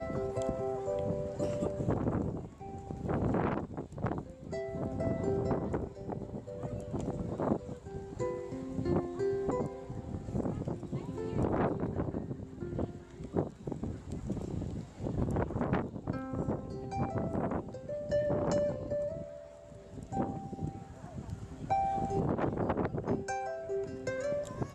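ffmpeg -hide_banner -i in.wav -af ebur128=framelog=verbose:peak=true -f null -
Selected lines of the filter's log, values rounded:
Integrated loudness:
  I:         -35.9 LUFS
  Threshold: -46.0 LUFS
Loudness range:
  LRA:         2.9 LU
  Threshold: -56.1 LUFS
  LRA low:   -37.8 LUFS
  LRA high:  -34.8 LUFS
True peak:
  Peak:      -14.6 dBFS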